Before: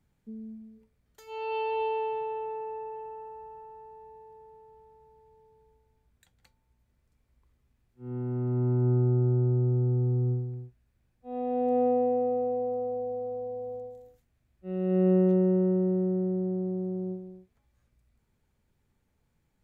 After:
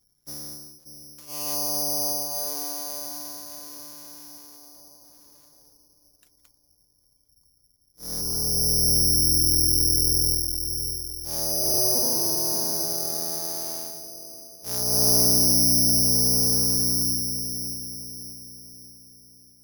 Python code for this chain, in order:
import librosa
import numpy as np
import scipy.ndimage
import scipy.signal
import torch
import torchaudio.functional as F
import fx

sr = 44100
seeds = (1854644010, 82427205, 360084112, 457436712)

y = fx.cycle_switch(x, sr, every=3, mode='inverted')
y = fx.spec_gate(y, sr, threshold_db=-25, keep='strong')
y = fx.env_lowpass_down(y, sr, base_hz=760.0, full_db=-25.5)
y = fx.echo_wet_lowpass(y, sr, ms=584, feedback_pct=44, hz=550.0, wet_db=-7.0)
y = (np.kron(y[::8], np.eye(8)[0]) * 8)[:len(y)]
y = F.gain(torch.from_numpy(y), -5.0).numpy()